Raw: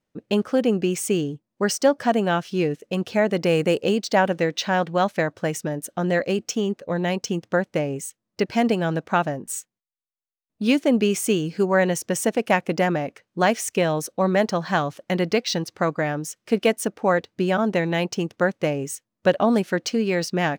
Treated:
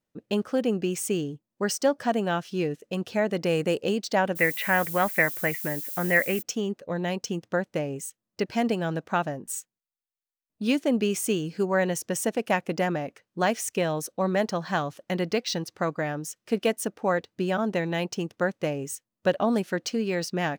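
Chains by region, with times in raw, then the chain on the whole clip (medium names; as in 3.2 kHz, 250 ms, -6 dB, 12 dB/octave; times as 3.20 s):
4.35–6.41 s: resonant low-pass 2.1 kHz, resonance Q 6.1 + added noise violet -34 dBFS
whole clip: treble shelf 8.4 kHz +4 dB; band-stop 2.2 kHz, Q 29; trim -5 dB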